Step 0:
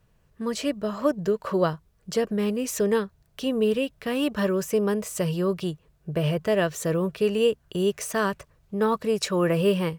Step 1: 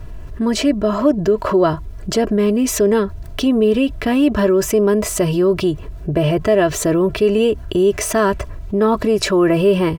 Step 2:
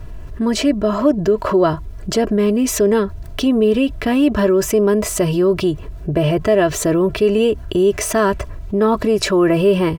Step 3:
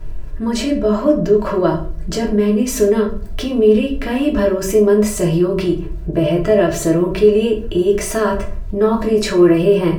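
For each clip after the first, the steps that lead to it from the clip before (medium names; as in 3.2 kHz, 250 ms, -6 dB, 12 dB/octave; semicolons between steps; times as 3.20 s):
tilt EQ -2 dB/octave; comb 3 ms, depth 62%; level flattener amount 50%; trim +3 dB
no audible change
crackle 13 per s -39 dBFS; simulated room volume 38 m³, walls mixed, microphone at 0.62 m; trim -4.5 dB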